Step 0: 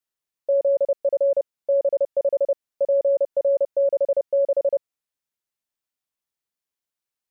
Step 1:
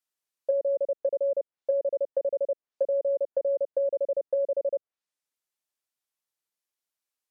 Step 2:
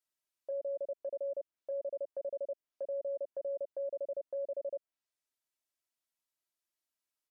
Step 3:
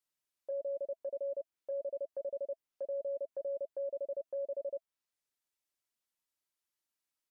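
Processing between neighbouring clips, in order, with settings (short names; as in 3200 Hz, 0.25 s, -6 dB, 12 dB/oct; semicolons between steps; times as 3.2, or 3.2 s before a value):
treble ducked by the level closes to 470 Hz, closed at -19 dBFS; tone controls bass -8 dB, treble +2 dB; gain -1.5 dB
comb 3.1 ms, depth 50%; limiter -28.5 dBFS, peak gain reduction 11 dB; gain -4 dB
notch 660 Hz, Q 12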